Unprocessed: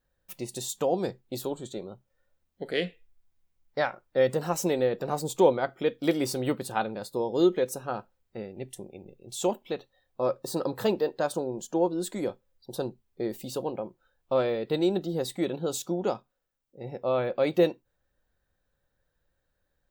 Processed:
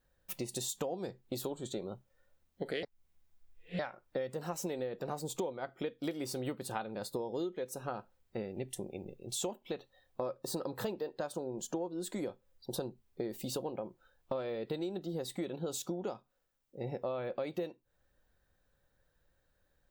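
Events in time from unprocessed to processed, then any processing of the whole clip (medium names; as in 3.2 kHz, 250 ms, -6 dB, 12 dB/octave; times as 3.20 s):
2.83–3.79 s: reverse
whole clip: compression 12:1, threshold -36 dBFS; trim +2 dB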